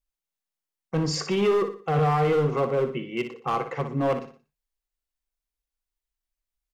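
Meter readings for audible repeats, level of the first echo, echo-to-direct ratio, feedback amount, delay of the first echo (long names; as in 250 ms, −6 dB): 4, −9.5 dB, −9.0 dB, 38%, 60 ms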